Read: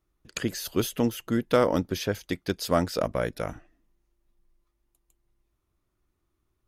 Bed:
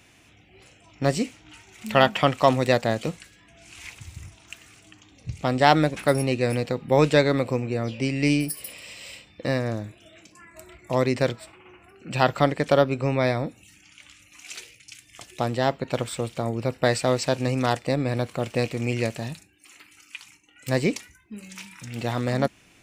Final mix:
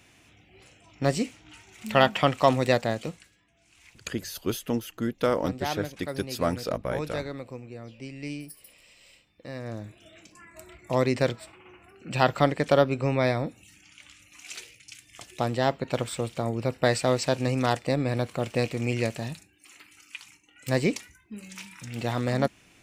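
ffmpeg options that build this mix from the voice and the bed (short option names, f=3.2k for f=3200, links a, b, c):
-filter_complex "[0:a]adelay=3700,volume=-3dB[a];[1:a]volume=11dB,afade=t=out:st=2.72:d=0.77:silence=0.237137,afade=t=in:st=9.52:d=0.55:silence=0.223872[b];[a][b]amix=inputs=2:normalize=0"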